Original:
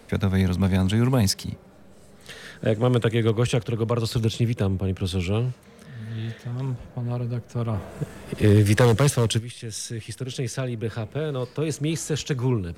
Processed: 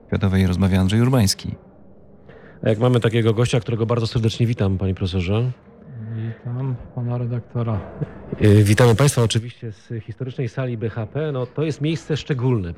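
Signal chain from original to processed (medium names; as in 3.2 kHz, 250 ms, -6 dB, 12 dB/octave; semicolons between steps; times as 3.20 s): level-controlled noise filter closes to 670 Hz, open at -16.5 dBFS; trim +4 dB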